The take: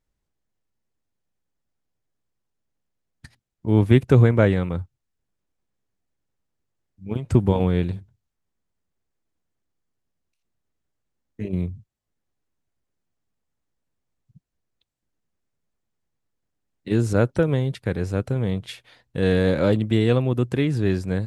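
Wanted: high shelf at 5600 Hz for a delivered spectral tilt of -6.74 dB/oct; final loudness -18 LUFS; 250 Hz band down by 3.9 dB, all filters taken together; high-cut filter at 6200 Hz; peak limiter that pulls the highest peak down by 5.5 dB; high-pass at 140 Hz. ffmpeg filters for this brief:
-af "highpass=140,lowpass=6.2k,equalizer=f=250:t=o:g=-4.5,highshelf=f=5.6k:g=-4,volume=7.5dB,alimiter=limit=-3dB:level=0:latency=1"

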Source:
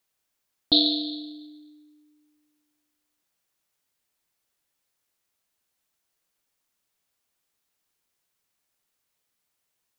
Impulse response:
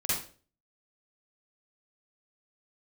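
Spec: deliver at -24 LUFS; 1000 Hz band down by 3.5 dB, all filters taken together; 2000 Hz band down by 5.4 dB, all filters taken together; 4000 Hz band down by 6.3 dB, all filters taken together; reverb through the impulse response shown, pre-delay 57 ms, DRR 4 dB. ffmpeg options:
-filter_complex "[0:a]equalizer=f=1k:t=o:g=-6.5,equalizer=f=2k:t=o:g=-4,equalizer=f=4k:t=o:g=-5.5,asplit=2[a][b];[1:a]atrim=start_sample=2205,adelay=57[c];[b][c]afir=irnorm=-1:irlink=0,volume=-11.5dB[d];[a][d]amix=inputs=2:normalize=0,volume=2.5dB"

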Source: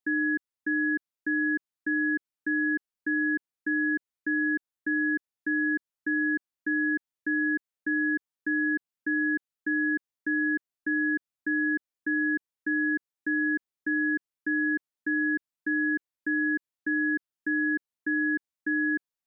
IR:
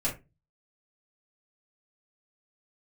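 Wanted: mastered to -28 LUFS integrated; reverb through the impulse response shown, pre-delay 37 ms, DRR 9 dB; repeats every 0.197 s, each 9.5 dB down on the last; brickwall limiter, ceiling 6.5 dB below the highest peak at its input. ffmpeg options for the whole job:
-filter_complex "[0:a]alimiter=level_in=2.5dB:limit=-24dB:level=0:latency=1,volume=-2.5dB,aecho=1:1:197|394|591|788:0.335|0.111|0.0365|0.012,asplit=2[a][b];[1:a]atrim=start_sample=2205,adelay=37[c];[b][c]afir=irnorm=-1:irlink=0,volume=-15.5dB[d];[a][d]amix=inputs=2:normalize=0,volume=3.5dB"

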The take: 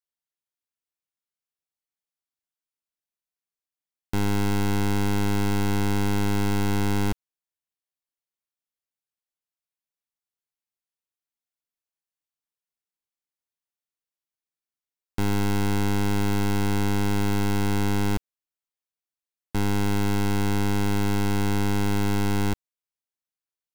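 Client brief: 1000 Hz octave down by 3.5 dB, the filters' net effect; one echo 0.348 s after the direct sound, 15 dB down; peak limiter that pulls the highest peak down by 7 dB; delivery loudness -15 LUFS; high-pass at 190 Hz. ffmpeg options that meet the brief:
-af "highpass=190,equalizer=f=1k:t=o:g=-4.5,alimiter=limit=-22dB:level=0:latency=1,aecho=1:1:348:0.178,volume=21.5dB"

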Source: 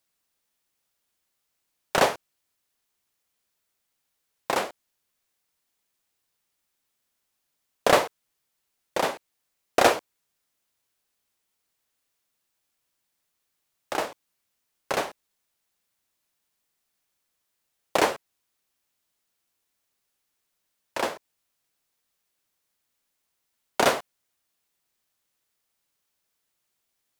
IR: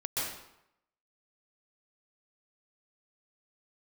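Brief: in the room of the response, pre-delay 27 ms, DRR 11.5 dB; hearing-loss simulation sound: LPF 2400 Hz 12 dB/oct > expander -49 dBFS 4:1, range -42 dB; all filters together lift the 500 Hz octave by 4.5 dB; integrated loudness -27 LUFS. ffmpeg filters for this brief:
-filter_complex "[0:a]equalizer=f=500:t=o:g=5.5,asplit=2[a][b];[1:a]atrim=start_sample=2205,adelay=27[c];[b][c]afir=irnorm=-1:irlink=0,volume=-17.5dB[d];[a][d]amix=inputs=2:normalize=0,lowpass=2.4k,agate=range=-42dB:threshold=-49dB:ratio=4,volume=-2.5dB"

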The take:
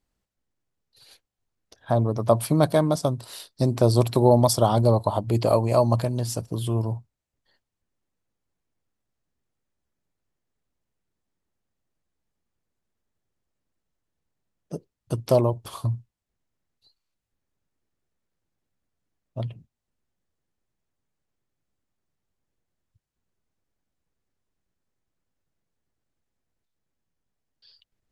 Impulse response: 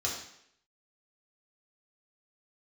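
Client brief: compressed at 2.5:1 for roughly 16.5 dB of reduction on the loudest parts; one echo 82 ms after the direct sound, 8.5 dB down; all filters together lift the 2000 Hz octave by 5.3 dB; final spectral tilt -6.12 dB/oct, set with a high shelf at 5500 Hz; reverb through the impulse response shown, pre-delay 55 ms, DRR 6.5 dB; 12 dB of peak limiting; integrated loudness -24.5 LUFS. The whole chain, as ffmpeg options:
-filter_complex "[0:a]equalizer=f=2k:t=o:g=8,highshelf=f=5.5k:g=-7,acompressor=threshold=-39dB:ratio=2.5,alimiter=level_in=5dB:limit=-24dB:level=0:latency=1,volume=-5dB,aecho=1:1:82:0.376,asplit=2[a][b];[1:a]atrim=start_sample=2205,adelay=55[c];[b][c]afir=irnorm=-1:irlink=0,volume=-12.5dB[d];[a][d]amix=inputs=2:normalize=0,volume=15.5dB"

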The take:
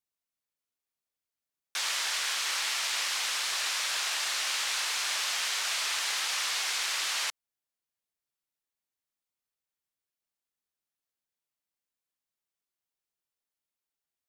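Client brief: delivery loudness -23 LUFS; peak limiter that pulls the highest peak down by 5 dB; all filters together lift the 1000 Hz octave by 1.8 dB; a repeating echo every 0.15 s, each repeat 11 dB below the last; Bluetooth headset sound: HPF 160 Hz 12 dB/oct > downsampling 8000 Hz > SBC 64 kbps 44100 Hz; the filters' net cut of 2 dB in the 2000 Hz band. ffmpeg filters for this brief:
-af "equalizer=f=1k:t=o:g=3.5,equalizer=f=2k:t=o:g=-3.5,alimiter=limit=-23.5dB:level=0:latency=1,highpass=160,aecho=1:1:150|300|450:0.282|0.0789|0.0221,aresample=8000,aresample=44100,volume=11.5dB" -ar 44100 -c:a sbc -b:a 64k

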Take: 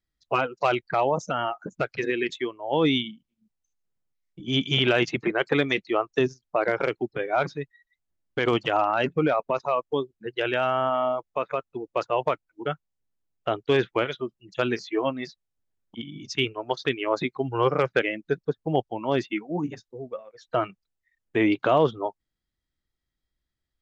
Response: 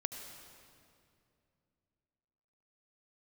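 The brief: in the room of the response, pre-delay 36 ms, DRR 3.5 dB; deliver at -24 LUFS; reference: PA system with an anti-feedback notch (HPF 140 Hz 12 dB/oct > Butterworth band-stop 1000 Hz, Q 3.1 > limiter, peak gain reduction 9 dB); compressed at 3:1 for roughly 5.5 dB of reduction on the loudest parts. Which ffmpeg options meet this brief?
-filter_complex "[0:a]acompressor=threshold=-24dB:ratio=3,asplit=2[a][b];[1:a]atrim=start_sample=2205,adelay=36[c];[b][c]afir=irnorm=-1:irlink=0,volume=-3.5dB[d];[a][d]amix=inputs=2:normalize=0,highpass=140,asuperstop=centerf=1000:order=8:qfactor=3.1,volume=8dB,alimiter=limit=-13dB:level=0:latency=1"

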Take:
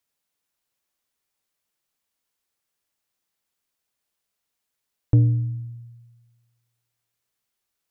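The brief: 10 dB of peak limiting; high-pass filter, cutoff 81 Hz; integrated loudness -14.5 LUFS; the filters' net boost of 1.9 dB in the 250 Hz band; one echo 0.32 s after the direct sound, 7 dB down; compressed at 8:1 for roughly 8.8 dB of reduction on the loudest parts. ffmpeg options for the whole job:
-af "highpass=81,equalizer=f=250:t=o:g=3,acompressor=threshold=-21dB:ratio=8,alimiter=limit=-22.5dB:level=0:latency=1,aecho=1:1:320:0.447,volume=17.5dB"

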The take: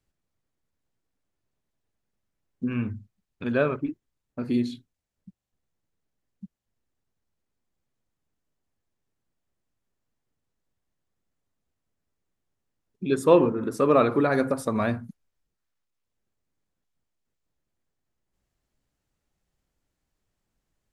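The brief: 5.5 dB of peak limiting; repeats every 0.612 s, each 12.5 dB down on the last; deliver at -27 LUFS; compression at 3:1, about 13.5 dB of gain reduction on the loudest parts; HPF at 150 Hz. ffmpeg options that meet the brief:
-af "highpass=150,acompressor=threshold=-30dB:ratio=3,alimiter=limit=-23.5dB:level=0:latency=1,aecho=1:1:612|1224|1836:0.237|0.0569|0.0137,volume=9dB"

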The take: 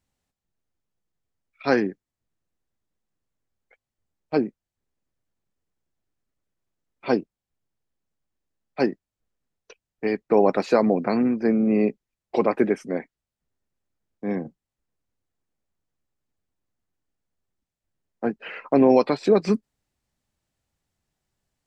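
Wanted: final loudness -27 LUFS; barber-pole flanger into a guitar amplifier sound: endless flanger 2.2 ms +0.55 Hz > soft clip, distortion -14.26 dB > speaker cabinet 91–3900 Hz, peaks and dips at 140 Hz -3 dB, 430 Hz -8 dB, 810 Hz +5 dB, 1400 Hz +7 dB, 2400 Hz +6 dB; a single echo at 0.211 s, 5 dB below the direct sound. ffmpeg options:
-filter_complex "[0:a]aecho=1:1:211:0.562,asplit=2[a][b];[b]adelay=2.2,afreqshift=0.55[c];[a][c]amix=inputs=2:normalize=1,asoftclip=threshold=-17dB,highpass=91,equalizer=f=140:t=q:w=4:g=-3,equalizer=f=430:t=q:w=4:g=-8,equalizer=f=810:t=q:w=4:g=5,equalizer=f=1.4k:t=q:w=4:g=7,equalizer=f=2.4k:t=q:w=4:g=6,lowpass=f=3.9k:w=0.5412,lowpass=f=3.9k:w=1.3066,volume=1.5dB"

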